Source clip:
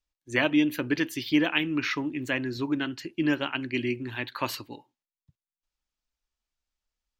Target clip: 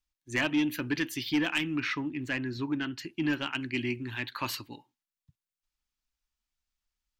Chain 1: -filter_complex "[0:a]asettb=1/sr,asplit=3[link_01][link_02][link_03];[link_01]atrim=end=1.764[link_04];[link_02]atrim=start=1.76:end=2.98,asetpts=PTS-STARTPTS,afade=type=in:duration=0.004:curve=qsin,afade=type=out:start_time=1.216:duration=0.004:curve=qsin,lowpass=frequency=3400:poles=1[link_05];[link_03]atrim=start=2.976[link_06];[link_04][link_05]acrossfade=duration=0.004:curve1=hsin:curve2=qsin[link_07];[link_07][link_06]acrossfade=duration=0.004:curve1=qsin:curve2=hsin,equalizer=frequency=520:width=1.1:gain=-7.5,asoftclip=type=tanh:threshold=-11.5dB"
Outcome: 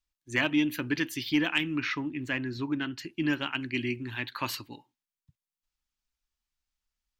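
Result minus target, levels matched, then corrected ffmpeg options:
soft clipping: distortion −10 dB
-filter_complex "[0:a]asettb=1/sr,asplit=3[link_01][link_02][link_03];[link_01]atrim=end=1.764[link_04];[link_02]atrim=start=1.76:end=2.98,asetpts=PTS-STARTPTS,afade=type=in:duration=0.004:curve=qsin,afade=type=out:start_time=1.216:duration=0.004:curve=qsin,lowpass=frequency=3400:poles=1[link_05];[link_03]atrim=start=2.976[link_06];[link_04][link_05]acrossfade=duration=0.004:curve1=hsin:curve2=qsin[link_07];[link_07][link_06]acrossfade=duration=0.004:curve1=qsin:curve2=hsin,equalizer=frequency=520:width=1.1:gain=-7.5,asoftclip=type=tanh:threshold=-19dB"

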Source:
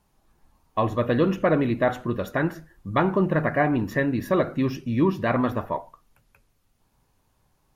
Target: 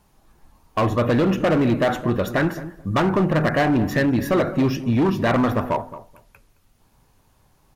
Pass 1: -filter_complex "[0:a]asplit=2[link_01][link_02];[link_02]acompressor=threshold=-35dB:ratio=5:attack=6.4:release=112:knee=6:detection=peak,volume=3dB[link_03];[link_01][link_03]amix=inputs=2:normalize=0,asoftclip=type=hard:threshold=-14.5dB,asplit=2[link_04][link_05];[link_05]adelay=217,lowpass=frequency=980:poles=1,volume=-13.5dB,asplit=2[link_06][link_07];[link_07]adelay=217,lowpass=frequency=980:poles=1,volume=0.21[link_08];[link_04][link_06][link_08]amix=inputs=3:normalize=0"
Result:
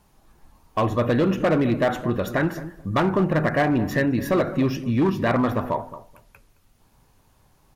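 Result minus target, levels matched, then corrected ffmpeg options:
downward compressor: peak gain reduction +9.5 dB
-filter_complex "[0:a]asplit=2[link_01][link_02];[link_02]acompressor=threshold=-23dB:ratio=5:attack=6.4:release=112:knee=6:detection=peak,volume=3dB[link_03];[link_01][link_03]amix=inputs=2:normalize=0,asoftclip=type=hard:threshold=-14.5dB,asplit=2[link_04][link_05];[link_05]adelay=217,lowpass=frequency=980:poles=1,volume=-13.5dB,asplit=2[link_06][link_07];[link_07]adelay=217,lowpass=frequency=980:poles=1,volume=0.21[link_08];[link_04][link_06][link_08]amix=inputs=3:normalize=0"

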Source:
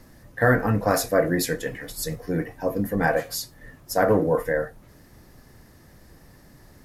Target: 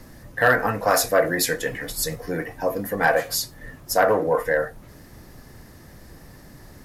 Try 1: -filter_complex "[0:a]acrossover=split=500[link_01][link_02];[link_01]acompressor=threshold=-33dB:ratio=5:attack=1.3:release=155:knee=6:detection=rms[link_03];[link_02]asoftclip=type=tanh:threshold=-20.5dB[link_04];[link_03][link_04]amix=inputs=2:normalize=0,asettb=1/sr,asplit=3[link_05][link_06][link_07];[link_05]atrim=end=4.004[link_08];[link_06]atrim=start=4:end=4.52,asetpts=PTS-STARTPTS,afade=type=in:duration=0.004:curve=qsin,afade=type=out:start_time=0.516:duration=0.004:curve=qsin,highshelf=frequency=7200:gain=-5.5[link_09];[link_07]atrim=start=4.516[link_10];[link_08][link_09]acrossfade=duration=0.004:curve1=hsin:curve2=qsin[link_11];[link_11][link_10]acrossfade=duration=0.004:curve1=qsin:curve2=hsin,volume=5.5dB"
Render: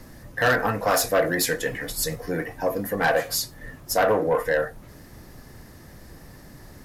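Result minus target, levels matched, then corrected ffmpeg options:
soft clipping: distortion +10 dB
-filter_complex "[0:a]acrossover=split=500[link_01][link_02];[link_01]acompressor=threshold=-33dB:ratio=5:attack=1.3:release=155:knee=6:detection=rms[link_03];[link_02]asoftclip=type=tanh:threshold=-12dB[link_04];[link_03][link_04]amix=inputs=2:normalize=0,asettb=1/sr,asplit=3[link_05][link_06][link_07];[link_05]atrim=end=4.004[link_08];[link_06]atrim=start=4:end=4.52,asetpts=PTS-STARTPTS,afade=type=in:duration=0.004:curve=qsin,afade=type=out:start_time=0.516:duration=0.004:curve=qsin,highshelf=frequency=7200:gain=-5.5[link_09];[link_07]atrim=start=4.516[link_10];[link_08][link_09]acrossfade=duration=0.004:curve1=hsin:curve2=qsin[link_11];[link_11][link_10]acrossfade=duration=0.004:curve1=qsin:curve2=hsin,volume=5.5dB"

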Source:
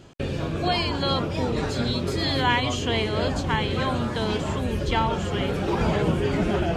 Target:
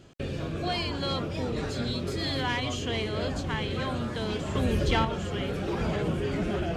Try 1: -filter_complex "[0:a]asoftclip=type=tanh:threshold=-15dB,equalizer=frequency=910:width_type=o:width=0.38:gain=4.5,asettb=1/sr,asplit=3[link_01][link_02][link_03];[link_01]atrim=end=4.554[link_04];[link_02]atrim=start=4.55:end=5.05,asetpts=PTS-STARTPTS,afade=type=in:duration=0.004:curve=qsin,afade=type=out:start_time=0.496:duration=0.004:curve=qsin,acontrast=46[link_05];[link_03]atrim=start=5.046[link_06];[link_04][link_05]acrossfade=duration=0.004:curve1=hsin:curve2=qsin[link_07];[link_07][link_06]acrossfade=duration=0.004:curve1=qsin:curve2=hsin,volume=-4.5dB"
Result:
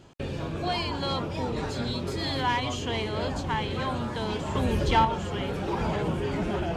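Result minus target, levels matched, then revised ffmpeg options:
1,000 Hz band +5.0 dB
-filter_complex "[0:a]asoftclip=type=tanh:threshold=-15dB,equalizer=frequency=910:width_type=o:width=0.38:gain=-5,asettb=1/sr,asplit=3[link_01][link_02][link_03];[link_01]atrim=end=4.554[link_04];[link_02]atrim=start=4.55:end=5.05,asetpts=PTS-STARTPTS,afade=type=in:duration=0.004:curve=qsin,afade=type=out:start_time=0.496:duration=0.004:curve=qsin,acontrast=46[link_05];[link_03]atrim=start=5.046[link_06];[link_04][link_05]acrossfade=duration=0.004:curve1=hsin:curve2=qsin[link_07];[link_07][link_06]acrossfade=duration=0.004:curve1=qsin:curve2=hsin,volume=-4.5dB"

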